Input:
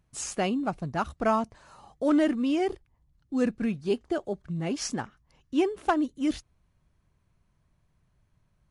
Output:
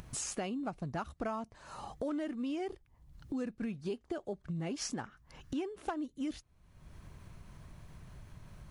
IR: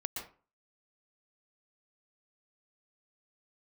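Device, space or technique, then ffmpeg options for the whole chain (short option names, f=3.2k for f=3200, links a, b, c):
upward and downward compression: -filter_complex "[0:a]acompressor=mode=upward:threshold=-31dB:ratio=2.5,acompressor=threshold=-32dB:ratio=6,asettb=1/sr,asplit=3[a][b][c];[a]atrim=end=5.034[d];[b]atrim=start=5.03:end=5.62,asetpts=PTS-STARTPTS,afade=t=in:d=0.004:c=qsin,afade=t=out:st=0.586:d=0.004:c=qsin,equalizer=f=1.5k:w=2.5:g=5.5[e];[c]atrim=start=5.616[f];[d][e]acrossfade=d=0.004:c1=hsin:c2=qsin[g];[g][f]acrossfade=d=0.004:c1=qsin:c2=hsin,volume=-2.5dB"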